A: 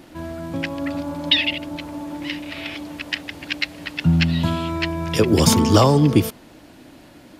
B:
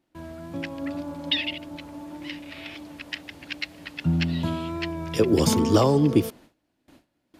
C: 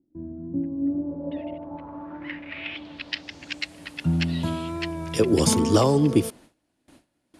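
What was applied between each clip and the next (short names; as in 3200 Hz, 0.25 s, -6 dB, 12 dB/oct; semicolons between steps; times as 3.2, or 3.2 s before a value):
dynamic EQ 380 Hz, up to +6 dB, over -29 dBFS, Q 0.92; gate with hold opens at -34 dBFS; wow and flutter 24 cents; gain -8 dB
low-pass sweep 290 Hz -> 10000 Hz, 0.79–3.79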